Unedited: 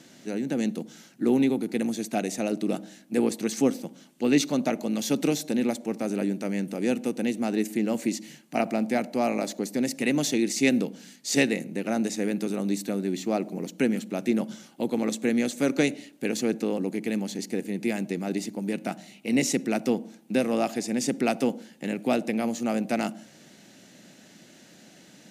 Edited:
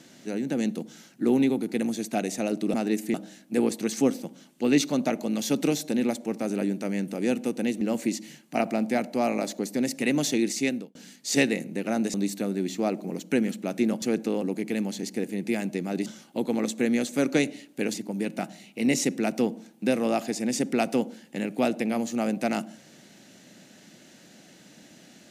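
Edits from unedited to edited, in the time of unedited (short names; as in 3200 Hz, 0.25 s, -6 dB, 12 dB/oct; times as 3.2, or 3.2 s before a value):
7.41–7.81 move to 2.74
10.47–10.95 fade out
12.14–12.62 cut
14.5–16.38 move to 18.42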